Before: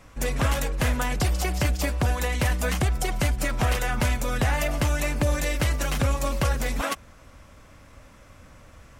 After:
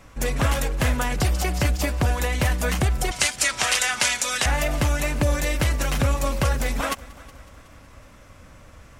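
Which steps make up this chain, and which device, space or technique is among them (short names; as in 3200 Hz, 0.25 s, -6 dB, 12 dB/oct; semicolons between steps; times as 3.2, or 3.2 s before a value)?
3.11–4.46 weighting filter ITU-R 468; multi-head tape echo (multi-head echo 0.185 s, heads first and second, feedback 53%, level -24 dB; wow and flutter 24 cents); gain +2 dB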